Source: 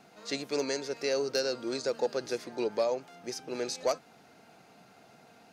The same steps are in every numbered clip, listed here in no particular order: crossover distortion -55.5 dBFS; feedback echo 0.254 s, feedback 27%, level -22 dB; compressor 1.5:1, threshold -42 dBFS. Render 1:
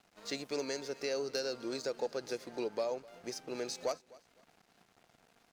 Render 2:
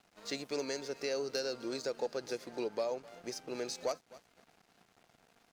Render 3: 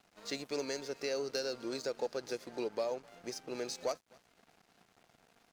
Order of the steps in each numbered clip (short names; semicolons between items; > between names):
crossover distortion > compressor > feedback echo; feedback echo > crossover distortion > compressor; compressor > feedback echo > crossover distortion